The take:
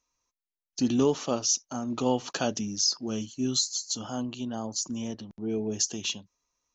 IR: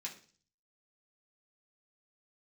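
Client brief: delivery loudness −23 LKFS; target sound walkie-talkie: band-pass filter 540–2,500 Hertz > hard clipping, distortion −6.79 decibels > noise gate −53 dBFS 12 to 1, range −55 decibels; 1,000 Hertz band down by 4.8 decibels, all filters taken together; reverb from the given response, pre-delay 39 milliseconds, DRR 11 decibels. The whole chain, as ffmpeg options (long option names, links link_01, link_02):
-filter_complex "[0:a]equalizer=frequency=1000:width_type=o:gain=-5.5,asplit=2[link_01][link_02];[1:a]atrim=start_sample=2205,adelay=39[link_03];[link_02][link_03]afir=irnorm=-1:irlink=0,volume=-9.5dB[link_04];[link_01][link_04]amix=inputs=2:normalize=0,highpass=540,lowpass=2500,asoftclip=type=hard:threshold=-34.5dB,agate=range=-55dB:threshold=-53dB:ratio=12,volume=18.5dB"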